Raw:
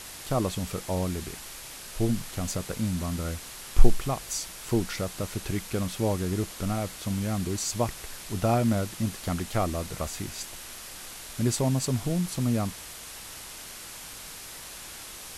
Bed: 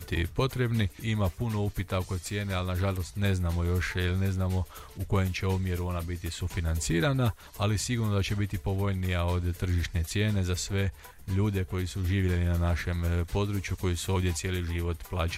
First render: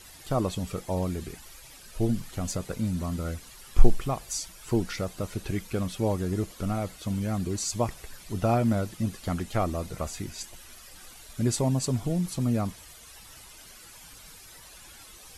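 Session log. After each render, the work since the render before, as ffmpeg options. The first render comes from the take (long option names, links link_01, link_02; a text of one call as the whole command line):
ffmpeg -i in.wav -af "afftdn=noise_reduction=12:noise_floor=-43" out.wav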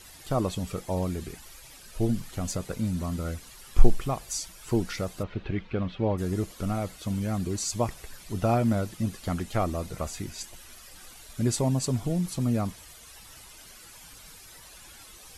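ffmpeg -i in.wav -filter_complex "[0:a]asplit=3[link_01][link_02][link_03];[link_01]afade=type=out:start_time=5.22:duration=0.02[link_04];[link_02]lowpass=frequency=3400:width=0.5412,lowpass=frequency=3400:width=1.3066,afade=type=in:start_time=5.22:duration=0.02,afade=type=out:start_time=6.17:duration=0.02[link_05];[link_03]afade=type=in:start_time=6.17:duration=0.02[link_06];[link_04][link_05][link_06]amix=inputs=3:normalize=0" out.wav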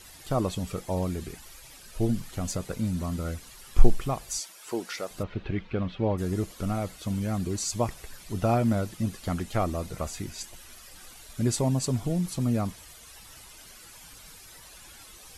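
ffmpeg -i in.wav -filter_complex "[0:a]asettb=1/sr,asplit=3[link_01][link_02][link_03];[link_01]atrim=end=4.394[link_04];[link_02]atrim=start=4.39:end=5.11,asetpts=PTS-STARTPTS,afade=type=in:duration=0.004:curve=qsin,afade=type=out:start_time=0.716:duration=0.004:curve=qsin,highpass=400[link_05];[link_03]atrim=start=5.106[link_06];[link_04][link_05]acrossfade=duration=0.004:curve1=hsin:curve2=qsin[link_07];[link_07][link_06]acrossfade=duration=0.004:curve1=qsin:curve2=hsin" out.wav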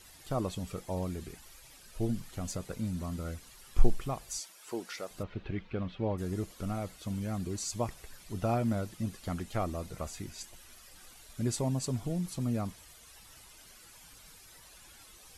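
ffmpeg -i in.wav -af "volume=-6dB" out.wav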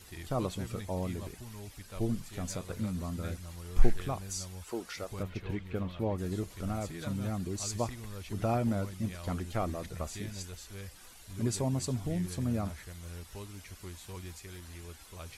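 ffmpeg -i in.wav -i bed.wav -filter_complex "[1:a]volume=-16.5dB[link_01];[0:a][link_01]amix=inputs=2:normalize=0" out.wav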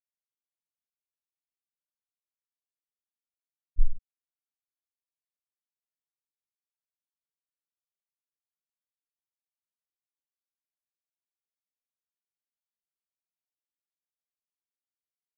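ffmpeg -i in.wav -af "afftfilt=real='re*gte(hypot(re,im),0.501)':imag='im*gte(hypot(re,im),0.501)':win_size=1024:overlap=0.75,equalizer=frequency=1600:width=1.1:gain=-8" out.wav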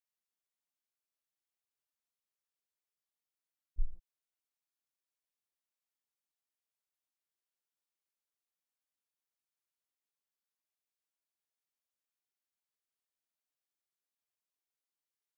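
ffmpeg -i in.wav -af "highpass=frequency=65:poles=1,equalizer=frequency=130:width_type=o:width=1.1:gain=-12" out.wav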